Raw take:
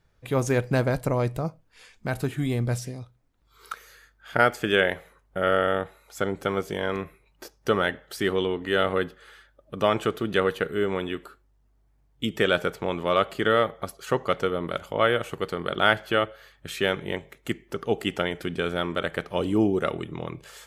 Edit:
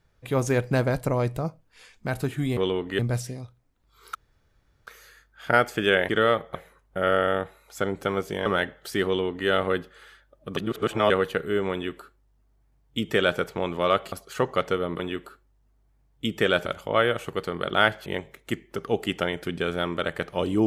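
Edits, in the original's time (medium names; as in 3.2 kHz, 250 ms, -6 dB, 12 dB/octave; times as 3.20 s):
3.73 s: insert room tone 0.72 s
6.86–7.72 s: delete
8.32–8.74 s: copy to 2.57 s
9.83–10.36 s: reverse
10.98–12.65 s: copy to 14.71 s
13.38–13.84 s: move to 4.95 s
16.11–17.04 s: delete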